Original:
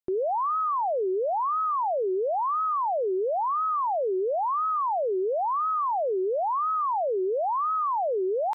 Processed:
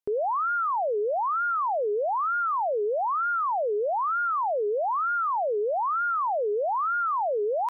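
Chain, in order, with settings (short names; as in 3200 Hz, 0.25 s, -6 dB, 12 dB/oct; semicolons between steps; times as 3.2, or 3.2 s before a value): wide varispeed 1.11×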